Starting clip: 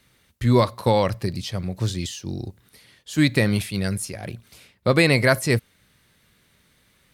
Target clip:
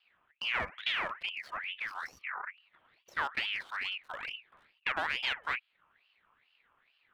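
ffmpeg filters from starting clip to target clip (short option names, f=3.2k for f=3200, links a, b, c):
-filter_complex "[0:a]lowpass=f=2.9k:w=0.5412,lowpass=f=2.9k:w=1.3066,aeval=exprs='(tanh(6.31*val(0)+0.65)-tanh(0.65))/6.31':c=same,acrossover=split=330|1300[a][b][c];[a]acompressor=threshold=-35dB:ratio=4[d];[b]acompressor=threshold=-30dB:ratio=4[e];[c]acompressor=threshold=-46dB:ratio=4[f];[d][e][f]amix=inputs=3:normalize=0,acrossover=split=1500[g][h];[h]aeval=exprs='sgn(val(0))*max(abs(val(0))-0.00224,0)':c=same[i];[g][i]amix=inputs=2:normalize=0,aeval=exprs='val(0)*sin(2*PI*2000*n/s+2000*0.45/2.3*sin(2*PI*2.3*n/s))':c=same"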